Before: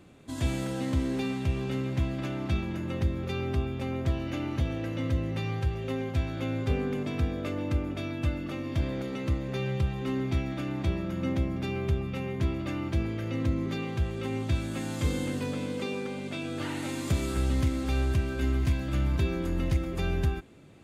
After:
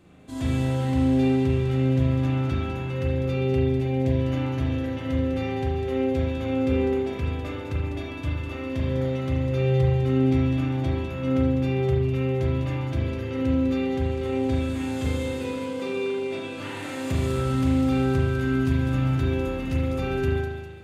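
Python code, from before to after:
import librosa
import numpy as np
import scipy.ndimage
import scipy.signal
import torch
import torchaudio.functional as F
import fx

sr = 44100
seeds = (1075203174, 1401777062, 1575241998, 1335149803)

p1 = fx.peak_eq(x, sr, hz=1300.0, db=-14.5, octaves=0.25, at=(3.32, 4.2))
p2 = p1 + fx.echo_wet_highpass(p1, sr, ms=201, feedback_pct=52, hz=3800.0, wet_db=-6, dry=0)
p3 = fx.rev_spring(p2, sr, rt60_s=1.2, pass_ms=(38,), chirp_ms=35, drr_db=-4.5)
y = p3 * librosa.db_to_amplitude(-2.5)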